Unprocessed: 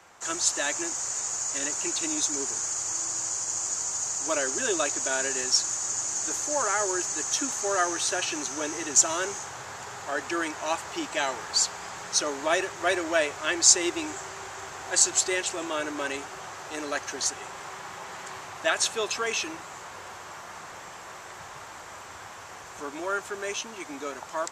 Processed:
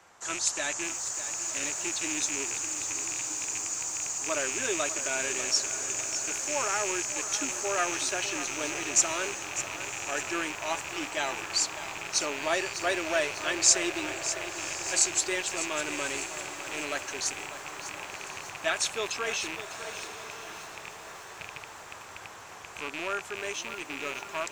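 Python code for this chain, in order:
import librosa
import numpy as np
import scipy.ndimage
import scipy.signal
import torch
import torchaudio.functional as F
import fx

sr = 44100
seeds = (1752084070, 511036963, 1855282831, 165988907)

p1 = fx.rattle_buzz(x, sr, strikes_db=-50.0, level_db=-21.0)
p2 = p1 + fx.echo_diffused(p1, sr, ms=1096, feedback_pct=42, wet_db=-13, dry=0)
p3 = fx.echo_crushed(p2, sr, ms=600, feedback_pct=55, bits=7, wet_db=-11)
y = p3 * 10.0 ** (-3.5 / 20.0)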